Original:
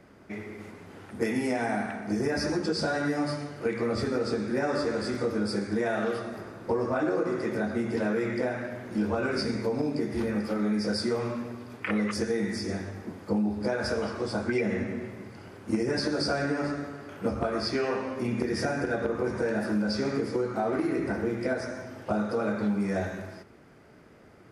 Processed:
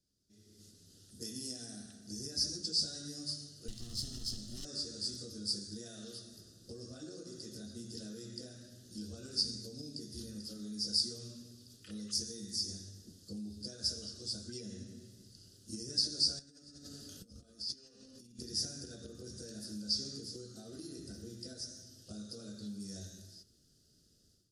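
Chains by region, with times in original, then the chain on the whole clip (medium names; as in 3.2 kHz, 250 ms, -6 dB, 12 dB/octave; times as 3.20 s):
3.68–4.65 s: comb filter that takes the minimum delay 0.95 ms + peaking EQ 3.1 kHz +2.5 dB 0.28 oct
16.39–18.39 s: comb 4 ms, depth 30% + compressor with a negative ratio -39 dBFS
whole clip: inverse Chebyshev high-pass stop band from 2.4 kHz, stop band 40 dB; tilt EQ -4 dB/octave; level rider gain up to 15 dB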